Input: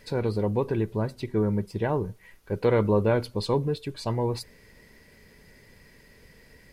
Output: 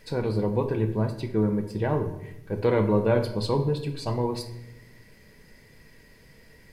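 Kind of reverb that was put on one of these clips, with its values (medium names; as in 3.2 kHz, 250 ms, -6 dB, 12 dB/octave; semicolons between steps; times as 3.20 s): simulated room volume 240 m³, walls mixed, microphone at 0.59 m; trim -1 dB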